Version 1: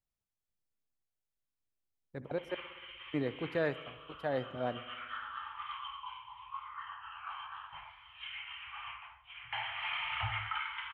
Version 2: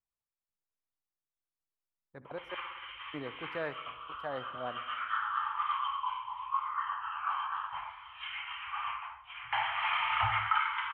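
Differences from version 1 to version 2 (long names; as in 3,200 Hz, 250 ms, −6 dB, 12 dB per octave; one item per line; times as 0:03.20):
speech −9.0 dB
master: add parametric band 1,100 Hz +11 dB 1.5 octaves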